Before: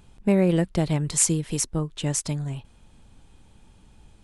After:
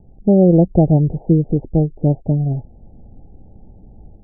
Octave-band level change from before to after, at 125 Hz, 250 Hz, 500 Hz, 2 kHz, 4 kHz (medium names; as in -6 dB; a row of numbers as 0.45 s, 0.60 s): +11.0 dB, +10.0 dB, +9.5 dB, under -40 dB, under -40 dB